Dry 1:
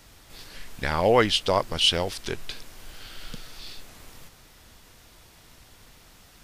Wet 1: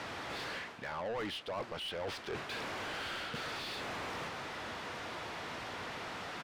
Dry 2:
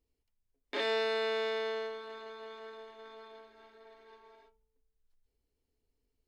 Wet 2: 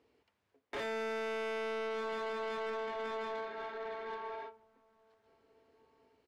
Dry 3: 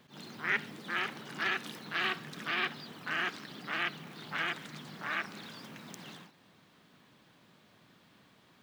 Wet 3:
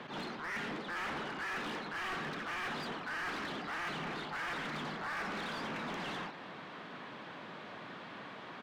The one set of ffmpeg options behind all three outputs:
-filter_complex "[0:a]highpass=f=70:w=0.5412,highpass=f=70:w=1.3066,aemphasis=mode=reproduction:type=75fm,areverse,acompressor=threshold=-44dB:ratio=6,areverse,asplit=2[a][b];[b]highpass=f=720:p=1,volume=26dB,asoftclip=type=tanh:threshold=-32.5dB[c];[a][c]amix=inputs=2:normalize=0,lowpass=f=2.2k:p=1,volume=-6dB,asplit=2[d][e];[e]adelay=1691,volume=-27dB,highshelf=f=4k:g=-38[f];[d][f]amix=inputs=2:normalize=0,volume=2dB"

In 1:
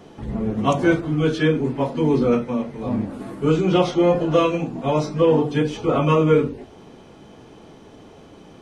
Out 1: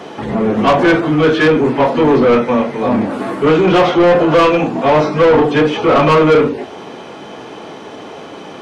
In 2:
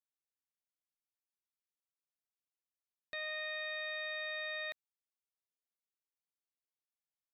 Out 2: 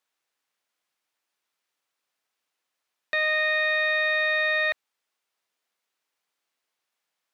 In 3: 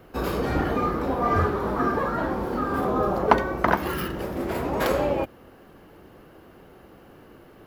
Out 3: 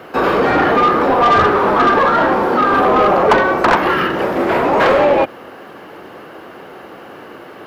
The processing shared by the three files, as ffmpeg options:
-filter_complex "[0:a]highpass=67,acrossover=split=3300[a][b];[b]acompressor=threshold=-53dB:ratio=4:attack=1:release=60[c];[a][c]amix=inputs=2:normalize=0,asplit=2[d][e];[e]highpass=f=720:p=1,volume=26dB,asoftclip=type=tanh:threshold=-1.5dB[f];[d][f]amix=inputs=2:normalize=0,lowpass=f=2.8k:p=1,volume=-6dB"

